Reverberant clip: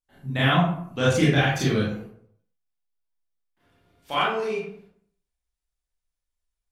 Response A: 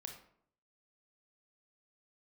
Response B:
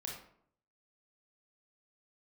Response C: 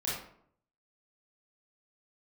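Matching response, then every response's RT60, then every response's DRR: C; 0.65 s, 0.65 s, 0.65 s; 3.0 dB, -2.0 dB, -7.5 dB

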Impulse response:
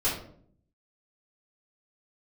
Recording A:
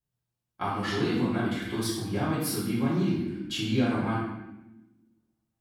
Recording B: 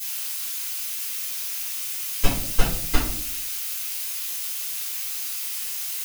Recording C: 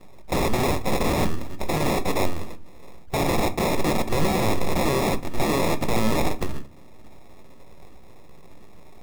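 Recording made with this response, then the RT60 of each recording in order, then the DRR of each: B; 0.95 s, 0.60 s, no single decay rate; -11.0 dB, -10.5 dB, 9.5 dB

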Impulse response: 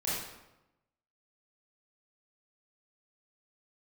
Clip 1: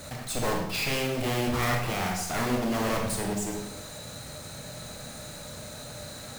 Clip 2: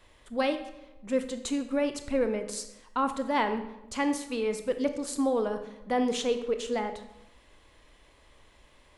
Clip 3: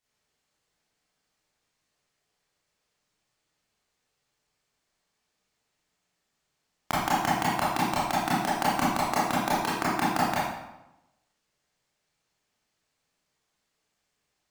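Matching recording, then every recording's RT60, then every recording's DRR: 3; 0.95 s, 0.95 s, 0.95 s; 0.5 dB, 8.5 dB, -9.0 dB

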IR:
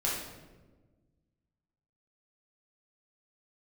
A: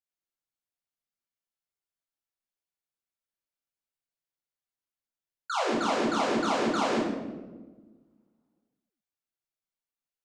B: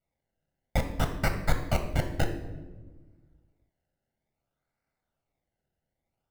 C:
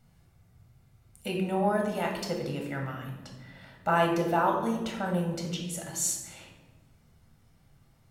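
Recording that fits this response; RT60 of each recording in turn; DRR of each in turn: A; 1.3 s, 1.3 s, 1.3 s; -5.5 dB, 5.5 dB, 0.5 dB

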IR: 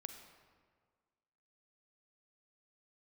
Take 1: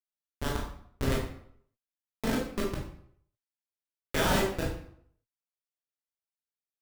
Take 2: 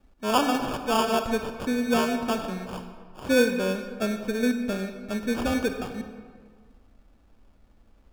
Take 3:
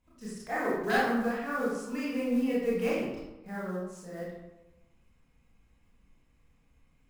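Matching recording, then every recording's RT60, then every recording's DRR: 2; 0.65 s, 1.7 s, 1.0 s; -4.0 dB, 6.5 dB, -8.5 dB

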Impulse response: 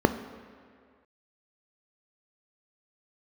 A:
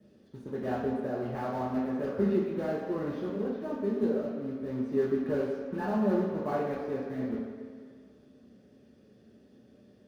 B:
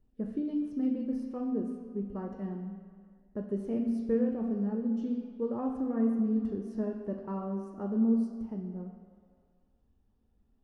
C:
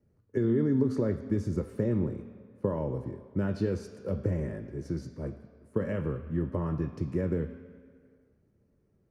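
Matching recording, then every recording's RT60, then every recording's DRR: C; 2.0 s, 2.0 s, 2.0 s; -5.0 dB, 2.5 dB, 9.0 dB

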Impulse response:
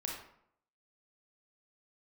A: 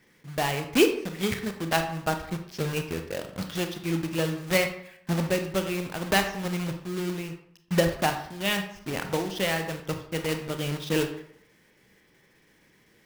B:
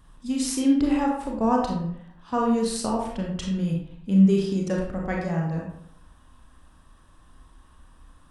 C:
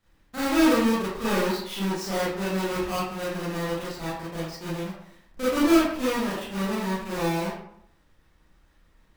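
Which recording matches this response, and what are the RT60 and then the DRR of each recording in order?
B; 0.70 s, 0.70 s, 0.70 s; 6.0 dB, -1.5 dB, -10.5 dB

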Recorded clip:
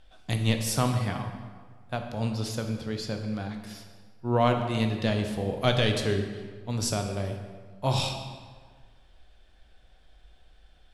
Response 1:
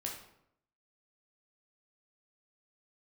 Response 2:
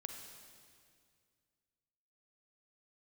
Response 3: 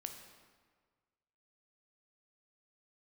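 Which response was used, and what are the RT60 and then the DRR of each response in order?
3; 0.75 s, 2.1 s, 1.6 s; -1.0 dB, 4.0 dB, 4.5 dB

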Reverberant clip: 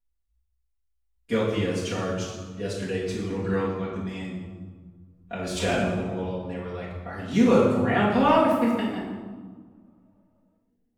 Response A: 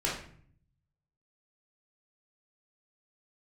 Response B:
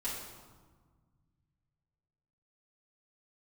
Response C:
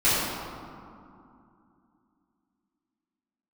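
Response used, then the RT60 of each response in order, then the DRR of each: B; 0.55 s, 1.5 s, 2.6 s; -5.0 dB, -10.0 dB, -13.0 dB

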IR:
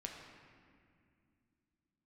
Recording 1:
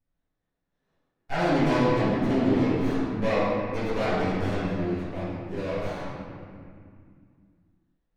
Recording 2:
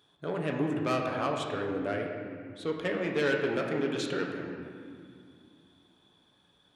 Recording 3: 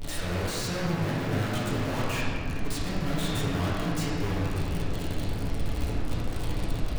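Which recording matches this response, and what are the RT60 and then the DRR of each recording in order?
2; 2.3 s, 2.3 s, 2.3 s; -18.0 dB, 0.5 dB, -8.5 dB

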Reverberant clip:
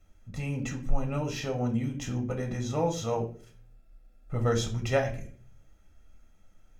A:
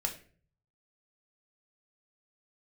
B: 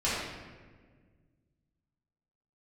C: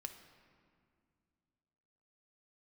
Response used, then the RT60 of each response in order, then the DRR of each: A; 0.45 s, 1.6 s, 2.3 s; 2.0 dB, -11.0 dB, 6.0 dB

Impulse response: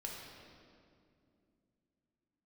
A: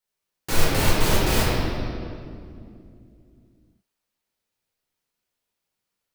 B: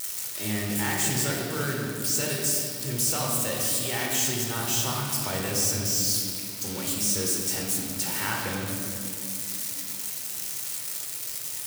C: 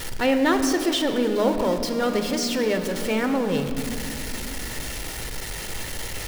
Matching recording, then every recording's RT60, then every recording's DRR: B; 2.5 s, 2.4 s, 2.6 s; -7.0 dB, -2.0 dB, 6.5 dB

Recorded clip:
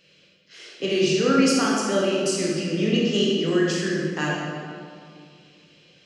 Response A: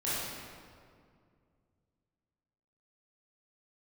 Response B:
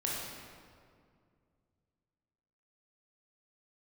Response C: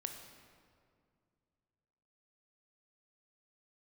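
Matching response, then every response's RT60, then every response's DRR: B; 2.2 s, 2.2 s, 2.2 s; -11.0 dB, -5.0 dB, 4.5 dB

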